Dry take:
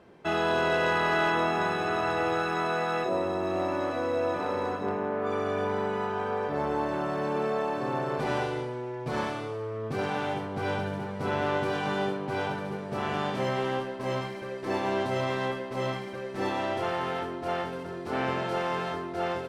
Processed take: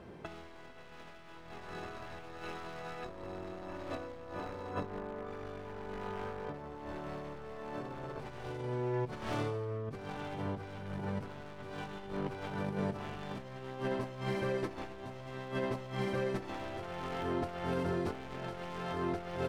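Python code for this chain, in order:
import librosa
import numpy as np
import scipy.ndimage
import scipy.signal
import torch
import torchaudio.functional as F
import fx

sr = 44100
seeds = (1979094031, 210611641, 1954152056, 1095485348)

y = np.minimum(x, 2.0 * 10.0 ** (-27.0 / 20.0) - x)
y = fx.low_shelf(y, sr, hz=140.0, db=10.5)
y = fx.over_compress(y, sr, threshold_db=-34.0, ratio=-0.5)
y = y * 10.0 ** (-4.5 / 20.0)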